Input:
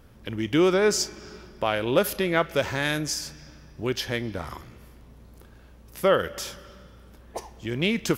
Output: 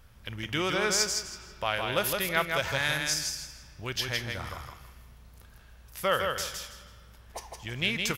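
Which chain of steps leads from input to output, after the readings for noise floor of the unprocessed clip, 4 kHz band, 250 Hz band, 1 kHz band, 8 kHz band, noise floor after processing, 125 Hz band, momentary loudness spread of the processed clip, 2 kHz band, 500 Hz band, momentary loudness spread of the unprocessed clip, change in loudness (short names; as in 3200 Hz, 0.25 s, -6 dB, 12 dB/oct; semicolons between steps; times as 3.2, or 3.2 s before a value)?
-51 dBFS, +1.0 dB, -11.0 dB, -2.0 dB, +1.0 dB, -53 dBFS, -5.0 dB, 17 LU, 0.0 dB, -8.5 dB, 18 LU, -3.5 dB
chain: bell 310 Hz -14.5 dB 2 oct; on a send: feedback echo 0.162 s, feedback 25%, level -4.5 dB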